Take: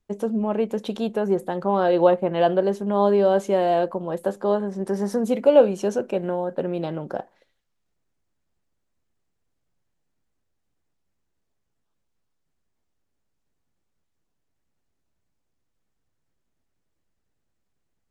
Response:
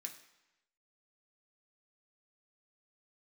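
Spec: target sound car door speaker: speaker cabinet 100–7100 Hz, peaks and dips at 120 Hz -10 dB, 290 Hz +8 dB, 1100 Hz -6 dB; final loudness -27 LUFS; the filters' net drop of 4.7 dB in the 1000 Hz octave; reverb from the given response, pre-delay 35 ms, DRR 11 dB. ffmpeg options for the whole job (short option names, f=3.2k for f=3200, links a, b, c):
-filter_complex "[0:a]equalizer=f=1k:t=o:g=-6,asplit=2[a][b];[1:a]atrim=start_sample=2205,adelay=35[c];[b][c]afir=irnorm=-1:irlink=0,volume=-7dB[d];[a][d]amix=inputs=2:normalize=0,highpass=100,equalizer=f=120:t=q:w=4:g=-10,equalizer=f=290:t=q:w=4:g=8,equalizer=f=1.1k:t=q:w=4:g=-6,lowpass=f=7.1k:w=0.5412,lowpass=f=7.1k:w=1.3066,volume=-4.5dB"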